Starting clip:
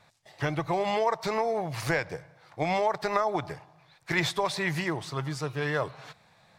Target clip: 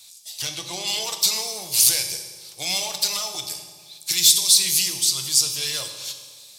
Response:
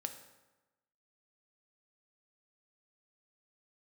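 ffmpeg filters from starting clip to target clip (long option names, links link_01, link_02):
-filter_complex "[0:a]asettb=1/sr,asplit=3[link_01][link_02][link_03];[link_01]atrim=end=3.354[link_04];[link_02]atrim=start=3.35:end=5.07,asetpts=PTS-STARTPTS,afade=type=in:duration=0.004:curve=qsin,afade=type=out:start_time=1.716:duration=0.004:curve=qsin,acrossover=split=280|3000[link_05][link_06][link_07];[link_06]acompressor=threshold=-34dB:ratio=6[link_08];[link_05][link_08][link_07]amix=inputs=3:normalize=0[link_09];[link_03]atrim=start=5.066[link_10];[link_04][link_09]acrossfade=duration=0.004:curve1=hsin:curve2=qsin[link_11];[link_11][link_10]acrossfade=duration=0.004:curve1=qsin:curve2=hsin,crystalizer=i=5:c=0,asettb=1/sr,asplit=3[link_12][link_13][link_14];[link_12]atrim=end=0.424[link_15];[link_13]atrim=start=0.42:end=1.04,asetpts=PTS-STARTPTS,afade=type=in:duration=0.004:curve=qsin,afade=type=out:start_time=0.616:duration=0.004:curve=qsin,adynamicsmooth=sensitivity=3.5:basefreq=6200[link_16];[link_14]atrim=start=1.036[link_17];[link_15][link_16]acrossfade=duration=0.004:curve1=hsin:curve2=qsin[link_18];[link_18][link_17]acrossfade=duration=0.004:curve1=qsin:curve2=hsin,asoftclip=type=hard:threshold=-19dB,aexciter=amount=12.8:drive=2.6:freq=2700[link_19];[1:a]atrim=start_sample=2205,asetrate=28224,aresample=44100[link_20];[link_19][link_20]afir=irnorm=-1:irlink=0,volume=-11dB"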